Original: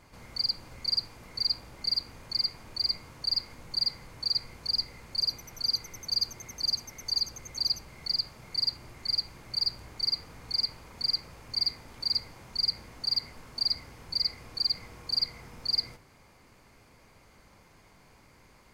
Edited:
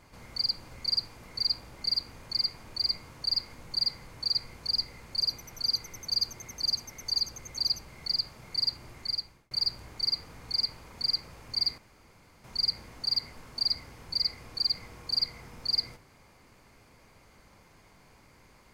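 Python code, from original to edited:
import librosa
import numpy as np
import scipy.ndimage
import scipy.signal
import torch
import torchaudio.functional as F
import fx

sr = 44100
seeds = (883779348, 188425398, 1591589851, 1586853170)

y = fx.edit(x, sr, fx.fade_out_span(start_s=8.99, length_s=0.52),
    fx.room_tone_fill(start_s=11.78, length_s=0.66), tone=tone)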